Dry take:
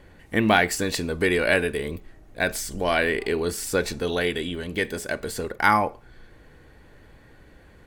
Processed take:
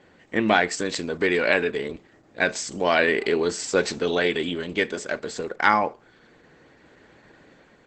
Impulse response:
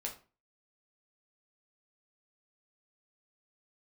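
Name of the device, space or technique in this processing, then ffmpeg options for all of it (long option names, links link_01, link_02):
video call: -af "highpass=180,dynaudnorm=framelen=570:gausssize=3:maxgain=4.5dB" -ar 48000 -c:a libopus -b:a 12k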